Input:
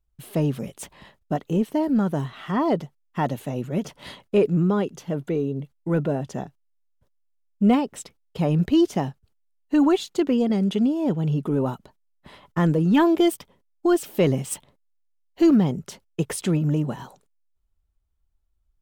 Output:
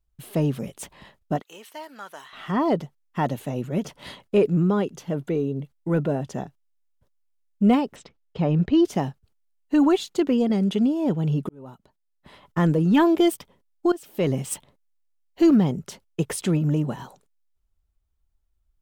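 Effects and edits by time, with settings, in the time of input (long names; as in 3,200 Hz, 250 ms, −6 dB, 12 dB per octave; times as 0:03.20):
0:01.42–0:02.33: high-pass filter 1,300 Hz
0:07.96–0:08.85: high-frequency loss of the air 140 metres
0:11.49–0:12.59: fade in
0:13.92–0:14.44: fade in, from −18.5 dB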